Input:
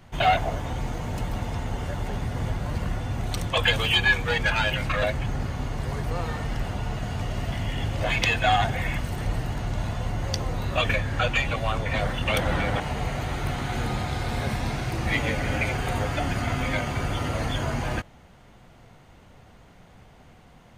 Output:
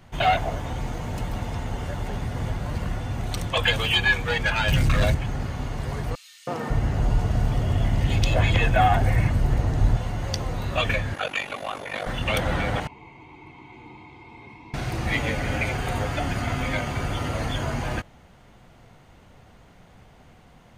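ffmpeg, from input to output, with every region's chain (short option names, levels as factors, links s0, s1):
-filter_complex "[0:a]asettb=1/sr,asplit=3[s0][s1][s2];[s0]atrim=end=4.684[s3];[s1]atrim=start=4.68:end=5.15,asetpts=PTS-STARTPTS,afade=t=in:d=0.004:c=qsin,afade=t=out:st=0.466:d=0.004:c=qsin,bass=f=250:g=12,treble=f=4000:g=10,volume=5.62,asoftclip=hard,volume=0.178[s4];[s2]atrim=start=5.146[s5];[s3][s4]acrossfade=d=0.004:c1=hsin:c2=qsin[s6];[s6][s5]acrossfade=d=0.004:c1=qsin:c2=hsin,asettb=1/sr,asplit=3[s7][s8][s9];[s7]atrim=end=6.154[s10];[s8]atrim=start=6.15:end=9.97,asetpts=PTS-STARTPTS,afade=t=in:d=0.004:c=qsin,afade=t=out:st=3.816:d=0.004:c=qsin,lowshelf=f=470:g=8.5,acrossover=split=180|3000[s11][s12][s13];[s12]adelay=320[s14];[s11]adelay=550[s15];[s15][s14][s13]amix=inputs=3:normalize=0,atrim=end_sample=168462[s16];[s9]atrim=start=9.966[s17];[s10][s16]acrossfade=d=0.004:c1=hsin:c2=qsin[s18];[s18][s17]acrossfade=d=0.004:c1=qsin:c2=hsin,asettb=1/sr,asplit=3[s19][s20][s21];[s19]atrim=end=11.144[s22];[s20]atrim=start=11.14:end=12.07,asetpts=PTS-STARTPTS,afade=t=in:d=0.004:c=qsin,afade=t=out:st=0.926:d=0.004:c=qsin,highpass=280,aeval=exprs='val(0)*sin(2*PI*24*n/s)':c=same,aeval=exprs='val(0)+0.00126*sin(2*PI*11000*n/s)':c=same[s23];[s21]atrim=start=12.066[s24];[s22][s23]acrossfade=d=0.004:c1=hsin:c2=qsin[s25];[s25][s24]acrossfade=d=0.004:c1=qsin:c2=hsin,asettb=1/sr,asplit=3[s26][s27][s28];[s26]atrim=end=12.874[s29];[s27]atrim=start=12.87:end=14.74,asetpts=PTS-STARTPTS,afade=t=in:d=0.004:c=qsin,afade=t=out:st=1.866:d=0.004:c=qsin,asplit=3[s30][s31][s32];[s30]bandpass=f=300:t=q:w=8,volume=1[s33];[s31]bandpass=f=870:t=q:w=8,volume=0.501[s34];[s32]bandpass=f=2240:t=q:w=8,volume=0.355[s35];[s33][s34][s35]amix=inputs=3:normalize=0,aecho=1:1:1.9:0.66,atrim=end_sample=82467[s36];[s28]atrim=start=14.736[s37];[s29][s36]acrossfade=d=0.004:c1=hsin:c2=qsin[s38];[s38][s37]acrossfade=d=0.004:c1=qsin:c2=hsin"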